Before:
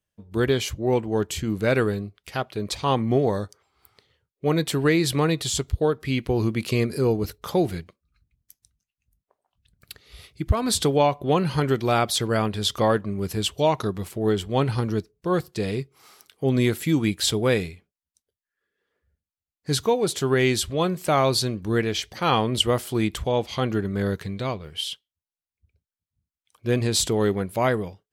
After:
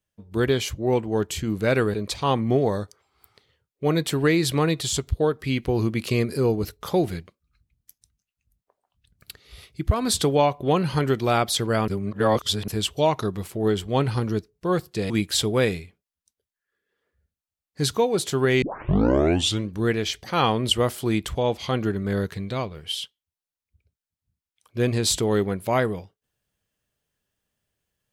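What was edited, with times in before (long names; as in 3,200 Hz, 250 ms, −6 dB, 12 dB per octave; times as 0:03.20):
0:01.94–0:02.55: remove
0:12.49–0:13.29: reverse
0:15.71–0:16.99: remove
0:20.51: tape start 1.08 s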